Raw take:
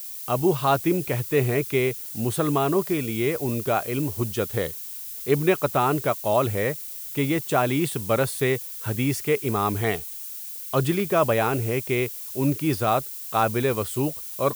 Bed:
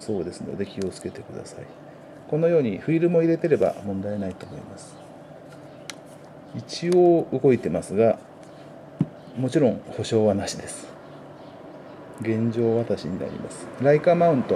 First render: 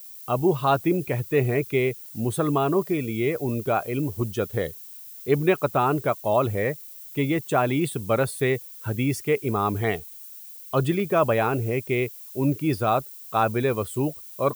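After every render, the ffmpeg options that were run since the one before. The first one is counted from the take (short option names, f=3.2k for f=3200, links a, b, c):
-af "afftdn=nr=9:nf=-36"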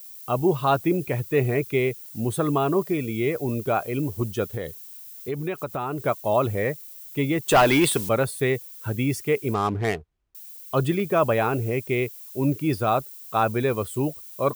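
-filter_complex "[0:a]asettb=1/sr,asplit=3[a][b][c];[a]atrim=end=4.494[d];[b]atrim=start=4.49:end=6,asetpts=PTS-STARTPTS,afade=t=in:d=0.004:c=qsin,afade=t=out:st=1.506:d=0.004:c=qsin,acompressor=threshold=-27dB:ratio=3:attack=3.2:release=140:knee=1:detection=peak[e];[c]atrim=start=5.996[f];[d][e]acrossfade=d=0.004:c1=hsin:c2=qsin[g];[g][f]acrossfade=d=0.004:c1=qsin:c2=hsin,asettb=1/sr,asplit=3[h][i][j];[h]atrim=end=7.484[k];[i]atrim=start=7.48:end=8.09,asetpts=PTS-STARTPTS,afade=t=in:d=0.004:c=qsin,afade=t=out:st=0.606:d=0.004:c=qsin,asplit=2[l][m];[m]highpass=f=720:p=1,volume=20dB,asoftclip=type=tanh:threshold=-8dB[n];[l][n]amix=inputs=2:normalize=0,lowpass=f=8k:p=1,volume=-6dB[o];[j]atrim=start=8.086[p];[k][o]acrossfade=d=0.004:c1=hsin:c2=qsin[q];[q][p]acrossfade=d=0.004:c1=qsin:c2=hsin,asettb=1/sr,asplit=3[r][s][t];[r]atrim=end=9.544[u];[s]atrim=start=9.54:end=10.35,asetpts=PTS-STARTPTS,afade=t=in:d=0.004:c=qsin,afade=t=out:st=0.806:d=0.004:c=qsin,adynamicsmooth=sensitivity=6:basefreq=550[v];[t]atrim=start=10.346[w];[u][v]acrossfade=d=0.004:c1=hsin:c2=qsin[x];[x][w]acrossfade=d=0.004:c1=qsin:c2=hsin"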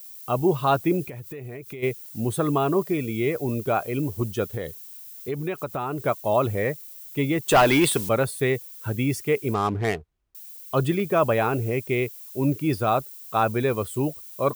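-filter_complex "[0:a]asplit=3[a][b][c];[a]afade=t=out:st=1.08:d=0.02[d];[b]acompressor=threshold=-33dB:ratio=16:attack=3.2:release=140:knee=1:detection=peak,afade=t=in:st=1.08:d=0.02,afade=t=out:st=1.82:d=0.02[e];[c]afade=t=in:st=1.82:d=0.02[f];[d][e][f]amix=inputs=3:normalize=0"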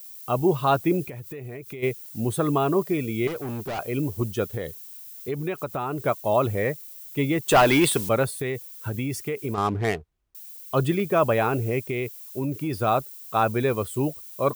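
-filter_complex "[0:a]asettb=1/sr,asplit=3[a][b][c];[a]atrim=end=3.274[d];[b]atrim=start=3.27:end=3.79,asetpts=PTS-STARTPTS,afade=t=in:d=0.004:c=qsin,afade=t=out:st=0.516:d=0.004:c=qsin,asoftclip=type=hard:threshold=-28.5dB[e];[c]atrim=start=3.786[f];[d][e]acrossfade=d=0.004:c1=hsin:c2=qsin[g];[g][f]acrossfade=d=0.004:c1=qsin:c2=hsin,asettb=1/sr,asplit=3[h][i][j];[h]atrim=end=8.314[k];[i]atrim=start=8.31:end=9.58,asetpts=PTS-STARTPTS,afade=t=in:d=0.004:c=qsin,afade=t=out:st=1.266:d=0.004:c=qsin,acompressor=threshold=-24dB:ratio=6:attack=3.2:release=140:knee=1:detection=peak[l];[j]atrim=start=9.576[m];[k][l]acrossfade=d=0.004:c1=hsin:c2=qsin[n];[n][m]acrossfade=d=0.004:c1=qsin:c2=hsin,asettb=1/sr,asplit=3[o][p][q];[o]atrim=end=11.804[r];[p]atrim=start=11.8:end=12.79,asetpts=PTS-STARTPTS,afade=t=in:d=0.004:c=qsin,afade=t=out:st=0.986:d=0.004:c=qsin,acompressor=threshold=-23dB:ratio=6:attack=3.2:release=140:knee=1:detection=peak[s];[q]atrim=start=12.786[t];[r][s]acrossfade=d=0.004:c1=hsin:c2=qsin[u];[u][t]acrossfade=d=0.004:c1=qsin:c2=hsin"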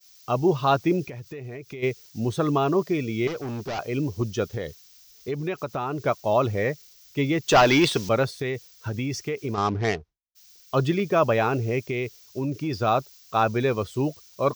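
-af "agate=range=-33dB:threshold=-39dB:ratio=3:detection=peak,highshelf=f=7.4k:t=q:w=3:g=-10"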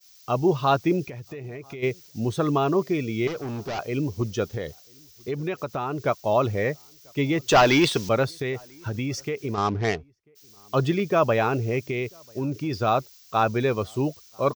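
-filter_complex "[0:a]asplit=2[a][b];[b]adelay=991.3,volume=-30dB,highshelf=f=4k:g=-22.3[c];[a][c]amix=inputs=2:normalize=0"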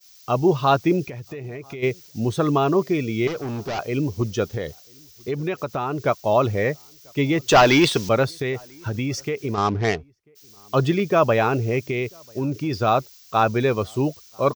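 -af "volume=3dB"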